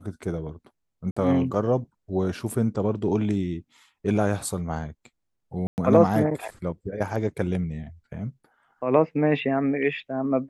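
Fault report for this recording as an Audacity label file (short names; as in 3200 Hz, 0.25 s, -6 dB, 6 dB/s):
1.110000	1.170000	gap 55 ms
5.670000	5.780000	gap 0.109 s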